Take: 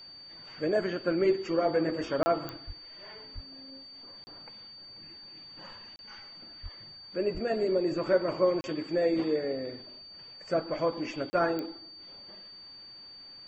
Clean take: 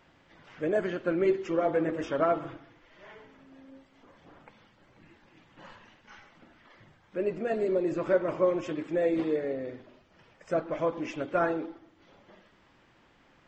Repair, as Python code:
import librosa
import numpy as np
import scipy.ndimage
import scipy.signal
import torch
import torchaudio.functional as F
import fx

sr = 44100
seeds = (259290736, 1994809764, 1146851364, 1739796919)

y = fx.fix_declick_ar(x, sr, threshold=10.0)
y = fx.notch(y, sr, hz=4600.0, q=30.0)
y = fx.fix_deplosive(y, sr, at_s=(2.66, 3.34, 6.62, 7.33))
y = fx.fix_interpolate(y, sr, at_s=(2.23, 4.24, 5.96, 8.61, 11.3), length_ms=30.0)